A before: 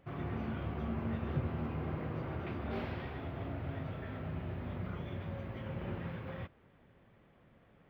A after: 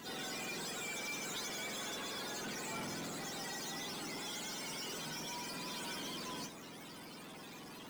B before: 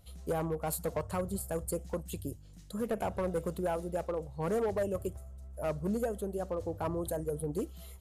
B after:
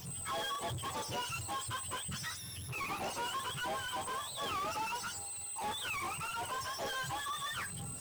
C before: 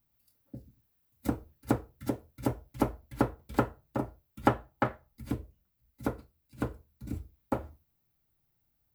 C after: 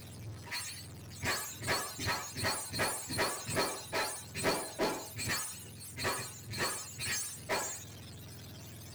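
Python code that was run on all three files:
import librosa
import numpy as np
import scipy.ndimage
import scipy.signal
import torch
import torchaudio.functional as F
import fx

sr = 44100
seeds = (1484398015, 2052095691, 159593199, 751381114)

y = fx.octave_mirror(x, sr, pivot_hz=730.0)
y = fx.power_curve(y, sr, exponent=0.35)
y = y * librosa.db_to_amplitude(-9.0)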